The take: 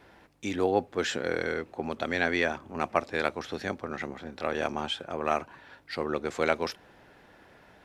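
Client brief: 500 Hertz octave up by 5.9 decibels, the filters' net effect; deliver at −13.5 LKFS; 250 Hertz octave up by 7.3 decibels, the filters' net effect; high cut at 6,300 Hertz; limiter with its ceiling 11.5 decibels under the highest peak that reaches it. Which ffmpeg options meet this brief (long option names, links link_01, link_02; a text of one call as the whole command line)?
ffmpeg -i in.wav -af "lowpass=6300,equalizer=frequency=250:width_type=o:gain=7.5,equalizer=frequency=500:width_type=o:gain=5,volume=17dB,alimiter=limit=-0.5dB:level=0:latency=1" out.wav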